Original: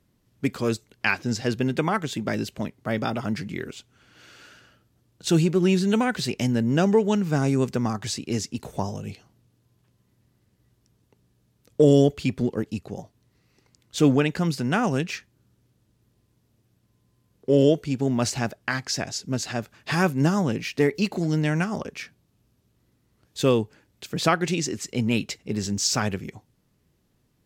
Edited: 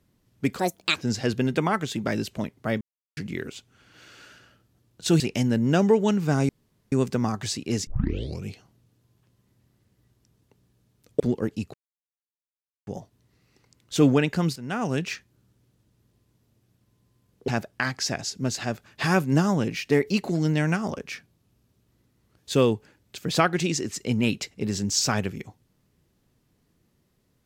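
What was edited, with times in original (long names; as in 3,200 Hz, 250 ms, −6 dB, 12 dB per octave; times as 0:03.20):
0:00.59–0:01.17: play speed 157%
0:03.02–0:03.38: silence
0:05.41–0:06.24: remove
0:07.53: splice in room tone 0.43 s
0:08.48: tape start 0.60 s
0:11.81–0:12.35: remove
0:12.89: splice in silence 1.13 s
0:14.58–0:15.07: fade in, from −15.5 dB
0:17.50–0:18.36: remove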